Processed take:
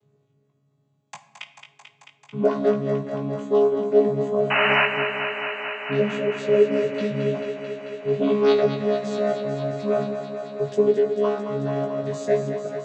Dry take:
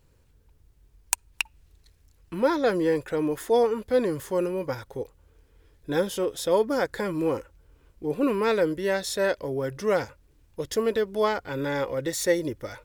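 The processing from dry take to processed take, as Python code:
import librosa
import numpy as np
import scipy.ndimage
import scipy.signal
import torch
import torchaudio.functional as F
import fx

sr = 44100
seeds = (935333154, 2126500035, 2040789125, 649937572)

y = fx.chord_vocoder(x, sr, chord='bare fifth', root=49)
y = fx.spec_erase(y, sr, start_s=5.97, length_s=1.37, low_hz=640.0, high_hz=1800.0)
y = fx.peak_eq(y, sr, hz=4000.0, db=14.0, octaves=1.5, at=(6.98, 8.7))
y = fx.spec_paint(y, sr, seeds[0], shape='noise', start_s=4.5, length_s=0.36, low_hz=580.0, high_hz=3000.0, level_db=-23.0)
y = fx.doubler(y, sr, ms=19.0, db=-4.5)
y = fx.echo_thinned(y, sr, ms=220, feedback_pct=84, hz=180.0, wet_db=-8.5)
y = fx.room_shoebox(y, sr, seeds[1], volume_m3=290.0, walls='mixed', distance_m=0.35)
y = y * 10.0 ** (1.5 / 20.0)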